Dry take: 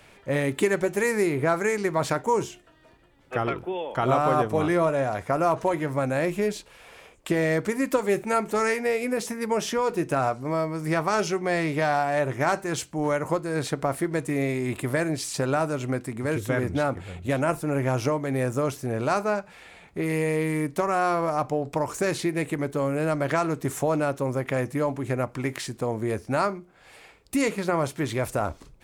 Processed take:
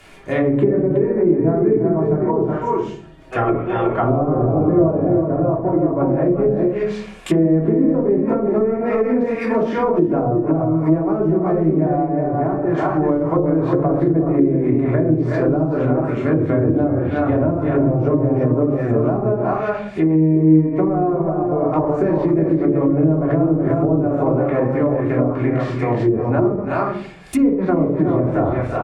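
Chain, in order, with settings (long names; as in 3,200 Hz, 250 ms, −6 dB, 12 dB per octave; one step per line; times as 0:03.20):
on a send: multi-tap delay 335/369 ms −12/−4.5 dB
on the sum: rectangular room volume 550 cubic metres, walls furnished, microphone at 3.2 metres
treble cut that deepens with the level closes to 430 Hz, closed at −14 dBFS
level +3.5 dB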